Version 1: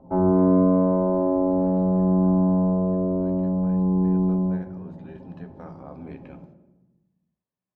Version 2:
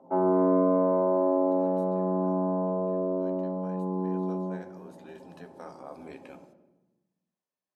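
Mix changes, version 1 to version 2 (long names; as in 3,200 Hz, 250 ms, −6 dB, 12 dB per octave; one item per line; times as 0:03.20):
speech: remove band-pass filter 130–2,900 Hz
master: add high-pass filter 360 Hz 12 dB per octave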